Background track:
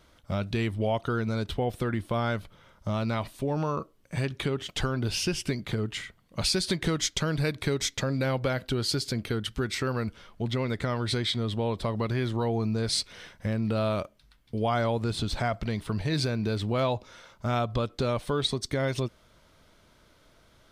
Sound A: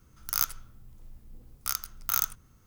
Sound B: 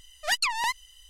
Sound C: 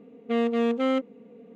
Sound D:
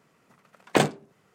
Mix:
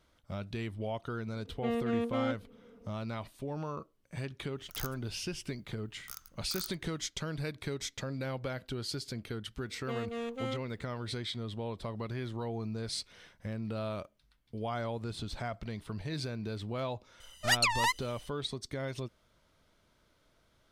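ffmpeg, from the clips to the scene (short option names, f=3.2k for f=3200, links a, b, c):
-filter_complex "[3:a]asplit=2[a][b];[0:a]volume=-9.5dB[c];[b]aemphasis=mode=production:type=bsi[d];[a]atrim=end=1.55,asetpts=PTS-STARTPTS,volume=-8.5dB,afade=t=in:d=0.004:c=hsin,afade=t=out:st=1.546:d=0.004:c=hsin,adelay=1330[e];[1:a]atrim=end=2.66,asetpts=PTS-STARTPTS,volume=-15.5dB,afade=t=in:d=0.004:c=hsin,afade=t=out:st=2.656:d=0.004:c=hsin,adelay=4420[f];[d]atrim=end=1.55,asetpts=PTS-STARTPTS,volume=-11dB,afade=t=in:d=0.004:c=hsin,afade=t=out:st=1.546:d=0.004:c=hsin,adelay=9580[g];[2:a]atrim=end=1.09,asetpts=PTS-STARTPTS,volume=-1.5dB,afade=t=in:d=0.004:c=hsin,afade=t=out:st=1.086:d=0.004:c=hsin,adelay=17200[h];[c][e][f][g][h]amix=inputs=5:normalize=0"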